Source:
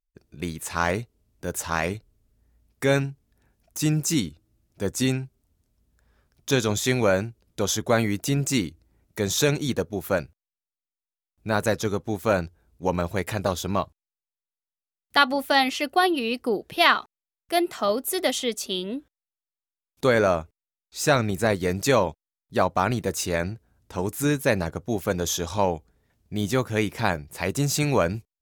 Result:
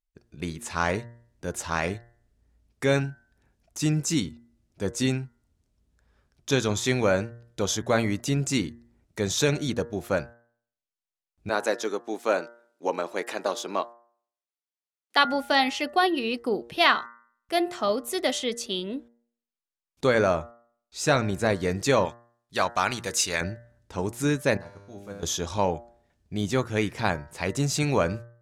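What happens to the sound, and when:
11.49–15.25 HPF 280 Hz 24 dB/oct
22.05–23.41 tilt shelf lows -8 dB
24.57–25.23 resonator 100 Hz, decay 1.2 s, mix 90%
whole clip: LPF 8900 Hz 12 dB/oct; de-hum 117.9 Hz, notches 17; gain -1.5 dB

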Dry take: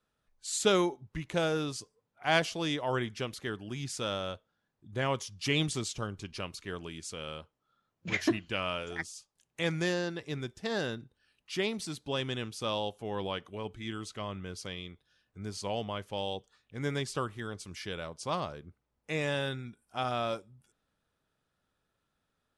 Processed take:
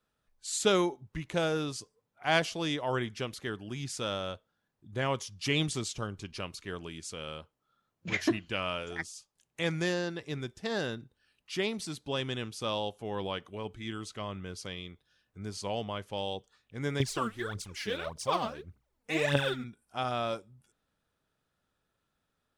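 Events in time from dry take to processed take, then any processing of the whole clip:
17–19.64 phaser 1.7 Hz, delay 4.7 ms, feedback 76%

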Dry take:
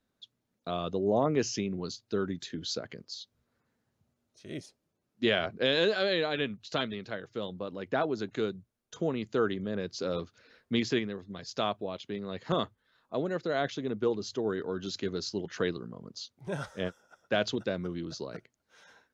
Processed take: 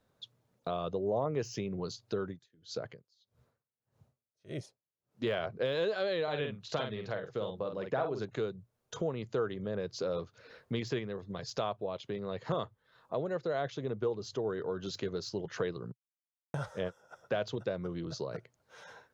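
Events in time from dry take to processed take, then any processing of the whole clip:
2.25–5.24 dB-linear tremolo 1.7 Hz, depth 34 dB
6.23–8.25 doubler 47 ms -6 dB
15.92–16.54 mute
whole clip: de-esser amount 85%; graphic EQ 125/250/500/1000 Hz +10/-5/+7/+5 dB; compressor 2:1, threshold -42 dBFS; gain +2.5 dB

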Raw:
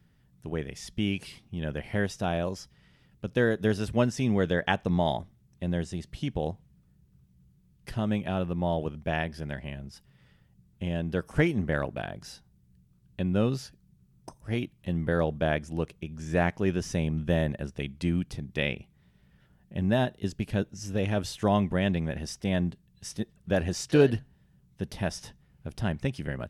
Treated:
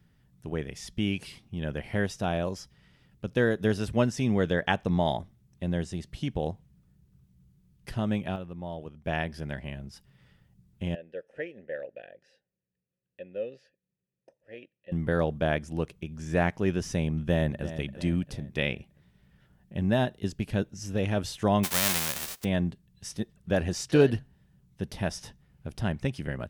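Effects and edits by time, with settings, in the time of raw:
7.9–9.5 dip -9.5 dB, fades 0.46 s logarithmic
10.95–14.92 vowel filter e
17.07–17.68 echo throw 0.34 s, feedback 45%, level -12.5 dB
21.63–22.43 spectral whitening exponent 0.1

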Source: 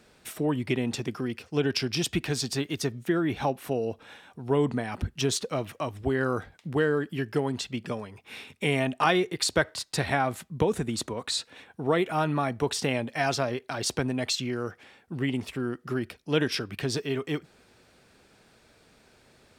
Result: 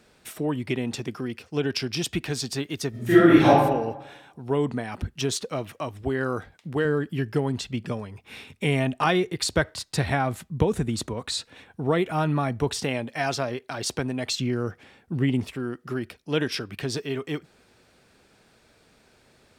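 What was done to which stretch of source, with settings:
2.9–3.49 reverb throw, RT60 1 s, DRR -12 dB
6.85–12.84 low shelf 150 Hz +10.5 dB
14.28–15.48 low shelf 300 Hz +9 dB

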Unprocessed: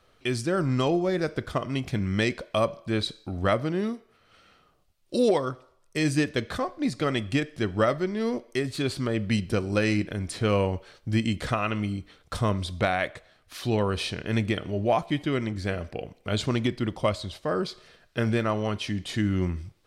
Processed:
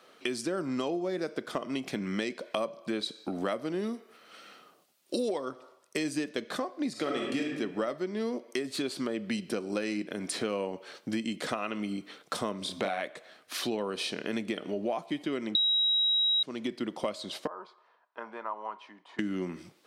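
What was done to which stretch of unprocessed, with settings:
3.35–5.33 high shelf 6900 Hz +6 dB
6.91–7.56 reverb throw, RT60 0.95 s, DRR -1 dB
12.58–13.01 doubler 31 ms -4 dB
15.55–16.43 bleep 3840 Hz -6.5 dBFS
17.47–19.19 band-pass 970 Hz, Q 7
whole clip: HPF 210 Hz 24 dB/oct; dynamic EQ 1700 Hz, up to -3 dB, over -39 dBFS, Q 0.84; compressor 4:1, threshold -37 dBFS; gain +6 dB

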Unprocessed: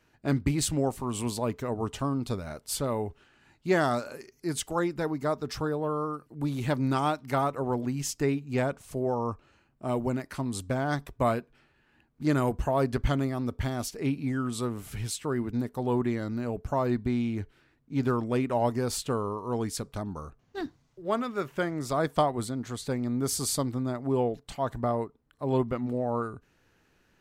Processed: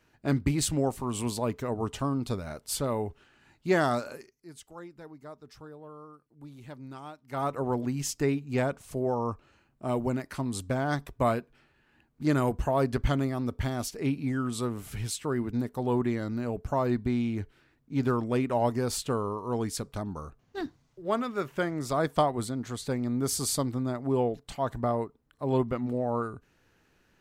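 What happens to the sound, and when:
4.13–7.51 dip -16.5 dB, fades 0.23 s

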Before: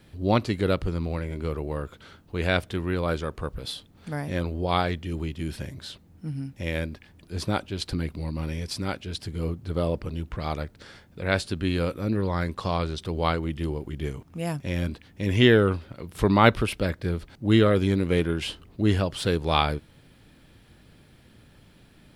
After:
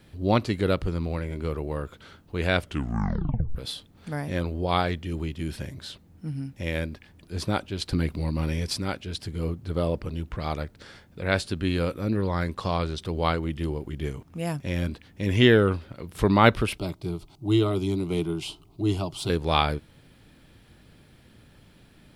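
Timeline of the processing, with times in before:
2.59 tape stop 0.96 s
7.93–8.77 gain +3.5 dB
16.78–19.3 fixed phaser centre 340 Hz, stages 8

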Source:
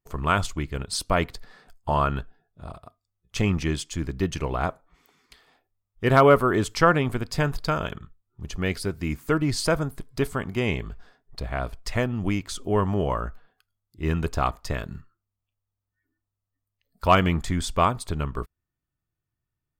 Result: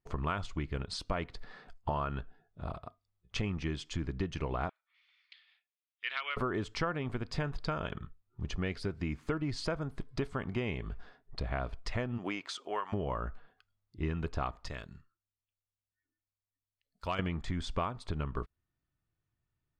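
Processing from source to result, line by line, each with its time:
4.69–6.37 Butterworth band-pass 3000 Hz, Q 1.3
12.17–12.92 HPF 320 Hz -> 1200 Hz
14.68–17.19 pre-emphasis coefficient 0.8
whole clip: compressor 6:1, threshold -31 dBFS; LPF 4100 Hz 12 dB/oct

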